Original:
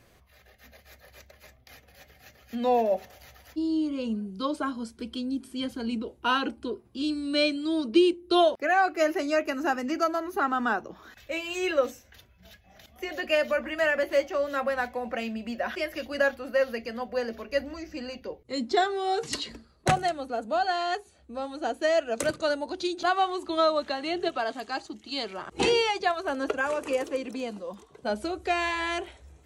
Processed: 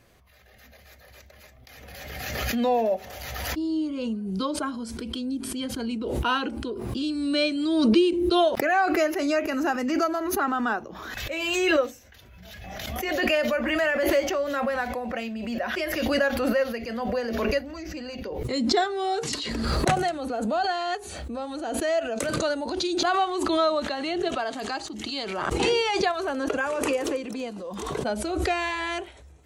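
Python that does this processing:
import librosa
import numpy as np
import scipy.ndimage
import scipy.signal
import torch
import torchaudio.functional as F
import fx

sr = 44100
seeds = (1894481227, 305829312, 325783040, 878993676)

y = fx.comb_fb(x, sr, f0_hz=220.0, decay_s=0.18, harmonics='all', damping=0.0, mix_pct=40, at=(21.6, 22.41))
y = fx.pre_swell(y, sr, db_per_s=28.0)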